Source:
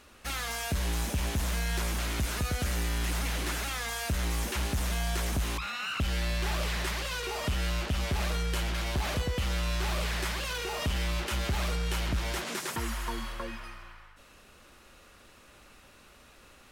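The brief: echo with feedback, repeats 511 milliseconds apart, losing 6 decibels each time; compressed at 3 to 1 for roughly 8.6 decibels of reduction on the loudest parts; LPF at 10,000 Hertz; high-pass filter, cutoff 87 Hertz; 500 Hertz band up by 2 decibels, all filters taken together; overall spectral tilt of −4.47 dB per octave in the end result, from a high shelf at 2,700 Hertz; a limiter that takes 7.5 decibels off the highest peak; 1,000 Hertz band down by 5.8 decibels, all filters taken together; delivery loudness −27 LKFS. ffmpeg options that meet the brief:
ffmpeg -i in.wav -af "highpass=87,lowpass=10000,equalizer=frequency=500:width_type=o:gain=5,equalizer=frequency=1000:width_type=o:gain=-8,highshelf=frequency=2700:gain=-9,acompressor=threshold=-40dB:ratio=3,alimiter=level_in=10.5dB:limit=-24dB:level=0:latency=1,volume=-10.5dB,aecho=1:1:511|1022|1533|2044|2555|3066:0.501|0.251|0.125|0.0626|0.0313|0.0157,volume=16.5dB" out.wav

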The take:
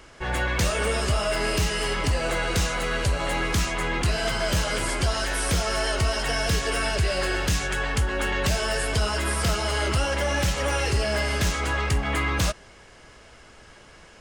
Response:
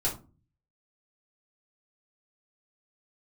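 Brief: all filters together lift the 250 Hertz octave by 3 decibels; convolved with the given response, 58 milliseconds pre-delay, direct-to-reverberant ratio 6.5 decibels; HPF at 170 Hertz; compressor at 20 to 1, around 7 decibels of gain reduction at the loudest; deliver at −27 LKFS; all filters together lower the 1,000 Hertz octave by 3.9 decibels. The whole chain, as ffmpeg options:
-filter_complex "[0:a]highpass=170,equalizer=frequency=250:width_type=o:gain=6,equalizer=frequency=1000:width_type=o:gain=-5.5,acompressor=threshold=-28dB:ratio=20,asplit=2[link_01][link_02];[1:a]atrim=start_sample=2205,adelay=58[link_03];[link_02][link_03]afir=irnorm=-1:irlink=0,volume=-13dB[link_04];[link_01][link_04]amix=inputs=2:normalize=0,volume=3.5dB"

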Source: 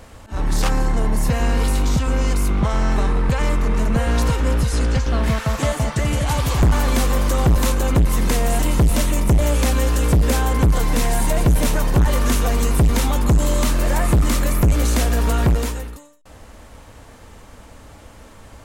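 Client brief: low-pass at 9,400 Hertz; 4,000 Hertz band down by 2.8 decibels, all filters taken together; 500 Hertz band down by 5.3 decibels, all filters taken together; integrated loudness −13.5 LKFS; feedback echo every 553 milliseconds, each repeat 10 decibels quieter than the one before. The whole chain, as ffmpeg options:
ffmpeg -i in.wav -af "lowpass=9400,equalizer=frequency=500:width_type=o:gain=-6.5,equalizer=frequency=4000:width_type=o:gain=-3.5,aecho=1:1:553|1106|1659|2212:0.316|0.101|0.0324|0.0104,volume=6dB" out.wav

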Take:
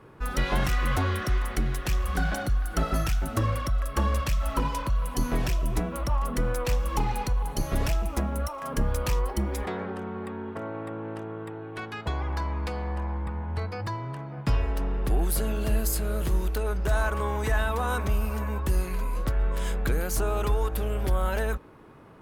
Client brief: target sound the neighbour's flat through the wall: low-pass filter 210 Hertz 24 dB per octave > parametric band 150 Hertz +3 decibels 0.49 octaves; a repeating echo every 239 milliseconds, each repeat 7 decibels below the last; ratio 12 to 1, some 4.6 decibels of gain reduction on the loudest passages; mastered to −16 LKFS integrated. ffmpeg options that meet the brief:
ffmpeg -i in.wav -af "acompressor=threshold=-24dB:ratio=12,lowpass=frequency=210:width=0.5412,lowpass=frequency=210:width=1.3066,equalizer=frequency=150:width_type=o:width=0.49:gain=3,aecho=1:1:239|478|717|956|1195:0.447|0.201|0.0905|0.0407|0.0183,volume=16.5dB" out.wav

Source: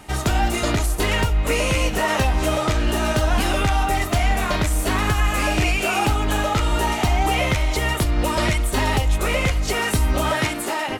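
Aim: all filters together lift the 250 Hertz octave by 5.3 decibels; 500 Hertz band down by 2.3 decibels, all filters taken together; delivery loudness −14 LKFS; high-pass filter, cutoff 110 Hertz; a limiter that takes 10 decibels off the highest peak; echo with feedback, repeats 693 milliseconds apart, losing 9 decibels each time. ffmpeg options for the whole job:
ffmpeg -i in.wav -af "highpass=110,equalizer=frequency=250:width_type=o:gain=9,equalizer=frequency=500:width_type=o:gain=-6,alimiter=limit=-15dB:level=0:latency=1,aecho=1:1:693|1386|2079|2772:0.355|0.124|0.0435|0.0152,volume=9.5dB" out.wav

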